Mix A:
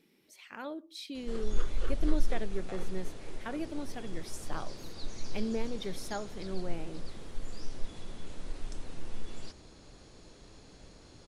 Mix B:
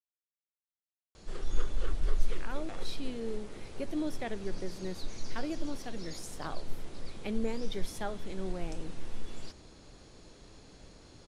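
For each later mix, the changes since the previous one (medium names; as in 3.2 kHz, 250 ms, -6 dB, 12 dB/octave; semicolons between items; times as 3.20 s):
speech: entry +1.90 s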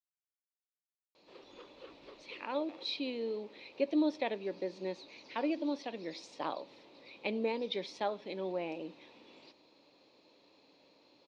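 background -11.5 dB; master: add cabinet simulation 270–5100 Hz, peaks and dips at 290 Hz +7 dB, 550 Hz +8 dB, 940 Hz +8 dB, 1.5 kHz -6 dB, 2.5 kHz +9 dB, 4 kHz +8 dB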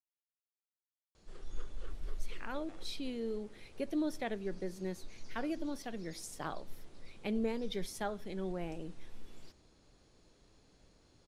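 master: remove cabinet simulation 270–5100 Hz, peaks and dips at 290 Hz +7 dB, 550 Hz +8 dB, 940 Hz +8 dB, 1.5 kHz -6 dB, 2.5 kHz +9 dB, 4 kHz +8 dB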